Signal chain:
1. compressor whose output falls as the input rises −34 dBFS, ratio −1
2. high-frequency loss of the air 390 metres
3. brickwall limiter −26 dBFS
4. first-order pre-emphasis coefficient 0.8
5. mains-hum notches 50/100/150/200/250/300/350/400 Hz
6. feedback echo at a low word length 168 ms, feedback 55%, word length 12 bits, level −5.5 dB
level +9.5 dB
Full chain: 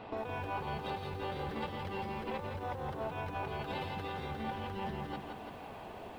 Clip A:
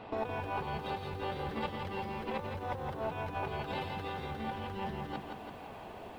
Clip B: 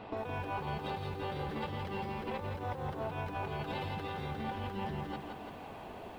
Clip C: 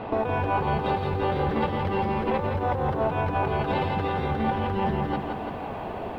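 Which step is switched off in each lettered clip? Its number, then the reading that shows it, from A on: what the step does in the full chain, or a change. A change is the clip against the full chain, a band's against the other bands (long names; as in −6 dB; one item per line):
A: 3, change in crest factor +2.0 dB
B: 5, 125 Hz band +2.5 dB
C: 4, 4 kHz band −7.0 dB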